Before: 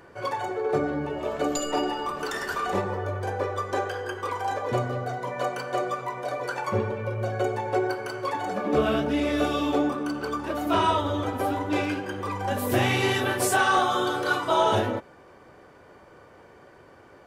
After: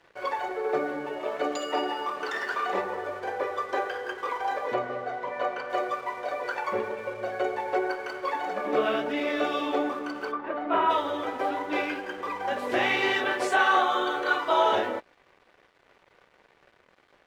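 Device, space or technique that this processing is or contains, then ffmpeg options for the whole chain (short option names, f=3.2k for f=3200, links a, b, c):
pocket radio on a weak battery: -filter_complex "[0:a]highpass=370,lowpass=4.1k,aeval=exprs='sgn(val(0))*max(abs(val(0))-0.00251,0)':c=same,equalizer=f=2k:t=o:w=0.43:g=4,asettb=1/sr,asplit=3[a][b][c];[a]atrim=end=4.744[d];[b]atrim=start=4.74:end=5.7,asetpts=PTS-STARTPTS,afade=t=in:d=0.004:c=qsin,afade=t=out:st=0.956:d=0.004:c=qsin,aemphasis=mode=reproduction:type=50fm[e];[c]atrim=start=5.696[f];[d][e]acrossfade=d=0.004:c1=hsin:c2=qsin[g];[g][f]acrossfade=d=0.004:c1=qsin:c2=hsin,asplit=3[h][i][j];[h]afade=t=out:st=10.31:d=0.02[k];[i]lowpass=2k,afade=t=in:st=10.31:d=0.02,afade=t=out:st=10.89:d=0.02[l];[j]afade=t=in:st=10.89:d=0.02[m];[k][l][m]amix=inputs=3:normalize=0,asettb=1/sr,asplit=3[n][o][p];[n]atrim=end=13.514[q];[o]atrim=start=13.51:end=14.39,asetpts=PTS-STARTPTS,afade=t=in:d=0.004:c=qsin,afade=t=out:st=0.876:d=0.004:c=qsin,bandreject=f=5.1k:w=6.5[r];[p]atrim=start=14.386[s];[q][r]acrossfade=d=0.004:c1=hsin:c2=qsin[t];[t][s]acrossfade=d=0.004:c1=qsin:c2=hsin"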